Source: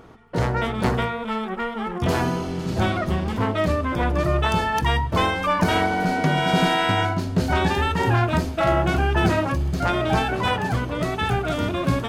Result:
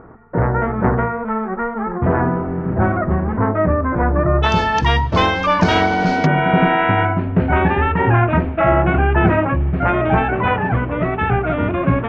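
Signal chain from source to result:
Butterworth low-pass 1,800 Hz 36 dB per octave, from 0:04.42 6,200 Hz, from 0:06.25 2,500 Hz
level +5.5 dB

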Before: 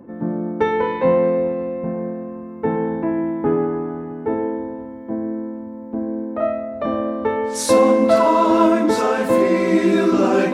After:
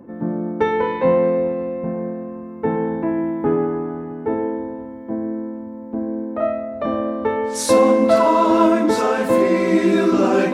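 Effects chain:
0:02.99–0:03.73: high-shelf EQ 10,000 Hz +8.5 dB

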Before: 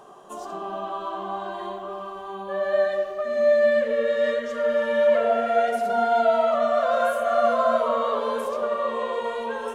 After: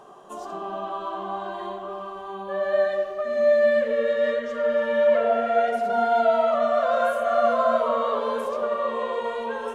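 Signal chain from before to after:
high-shelf EQ 6,200 Hz −4.5 dB, from 0:04.13 −10.5 dB, from 0:05.93 −6 dB

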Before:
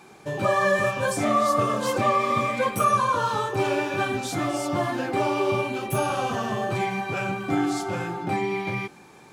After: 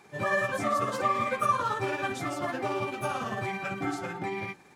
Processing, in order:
dynamic equaliser 1,300 Hz, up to +6 dB, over −42 dBFS, Q 6
time stretch by overlap-add 0.51×, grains 111 ms
parametric band 1,900 Hz +6 dB 0.49 octaves
level −6 dB

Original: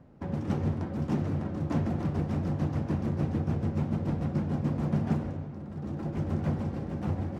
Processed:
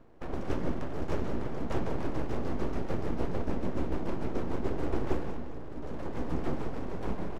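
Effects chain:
full-wave rectification
multi-tap delay 178/395 ms −11.5/−18 dB

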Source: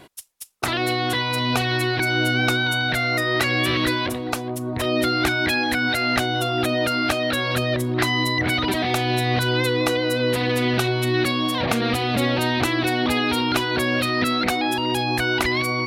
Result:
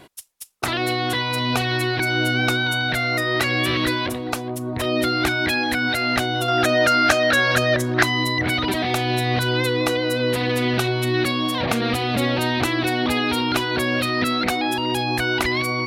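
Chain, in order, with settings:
0:06.48–0:08.03: graphic EQ with 15 bands 630 Hz +5 dB, 1,600 Hz +10 dB, 6,300 Hz +10 dB

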